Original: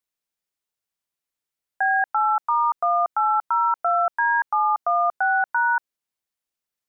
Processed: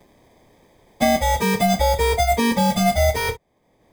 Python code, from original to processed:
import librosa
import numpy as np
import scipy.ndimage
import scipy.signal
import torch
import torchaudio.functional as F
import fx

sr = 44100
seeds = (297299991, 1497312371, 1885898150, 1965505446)

p1 = fx.over_compress(x, sr, threshold_db=-27.0, ratio=-0.5)
p2 = x + (p1 * librosa.db_to_amplitude(2.0))
p3 = fx.dynamic_eq(p2, sr, hz=720.0, q=0.84, threshold_db=-29.0, ratio=4.0, max_db=3)
p4 = fx.sample_hold(p3, sr, seeds[0], rate_hz=1400.0, jitter_pct=0)
p5 = fx.stretch_vocoder_free(p4, sr, factor=0.57)
p6 = p5 + fx.room_early_taps(p5, sr, ms=(27, 56), db=(-9.5, -16.0), dry=0)
y = fx.band_squash(p6, sr, depth_pct=70)